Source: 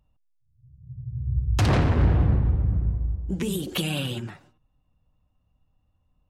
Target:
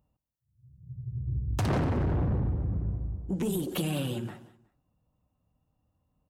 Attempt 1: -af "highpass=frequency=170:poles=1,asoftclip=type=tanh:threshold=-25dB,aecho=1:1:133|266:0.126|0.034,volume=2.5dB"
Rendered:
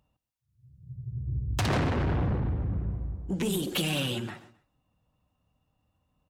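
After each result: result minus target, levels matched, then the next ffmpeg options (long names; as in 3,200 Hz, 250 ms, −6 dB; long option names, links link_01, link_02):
4,000 Hz band +8.0 dB; echo 52 ms early
-af "highpass=frequency=170:poles=1,equalizer=frequency=3200:width=0.4:gain=-10,asoftclip=type=tanh:threshold=-25dB,aecho=1:1:133|266:0.126|0.034,volume=2.5dB"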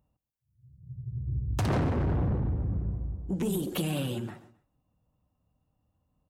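echo 52 ms early
-af "highpass=frequency=170:poles=1,equalizer=frequency=3200:width=0.4:gain=-10,asoftclip=type=tanh:threshold=-25dB,aecho=1:1:185|370:0.126|0.034,volume=2.5dB"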